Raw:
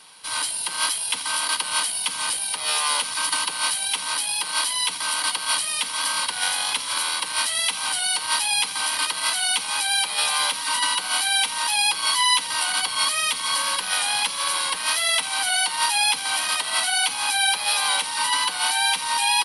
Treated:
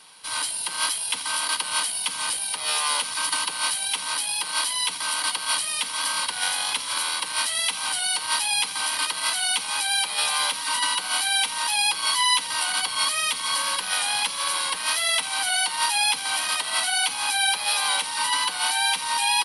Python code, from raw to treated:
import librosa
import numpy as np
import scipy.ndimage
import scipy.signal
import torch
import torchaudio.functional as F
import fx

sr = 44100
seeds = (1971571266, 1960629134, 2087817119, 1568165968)

y = x * librosa.db_to_amplitude(-1.5)